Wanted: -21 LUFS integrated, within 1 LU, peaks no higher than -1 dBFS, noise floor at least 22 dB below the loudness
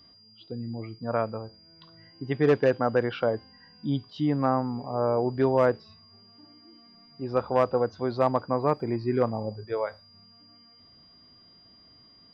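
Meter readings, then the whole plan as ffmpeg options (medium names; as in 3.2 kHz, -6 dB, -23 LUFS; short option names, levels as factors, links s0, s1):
steady tone 4.8 kHz; tone level -54 dBFS; loudness -27.5 LUFS; peak level -11.0 dBFS; loudness target -21.0 LUFS
-> -af "bandreject=f=4800:w=30"
-af "volume=2.11"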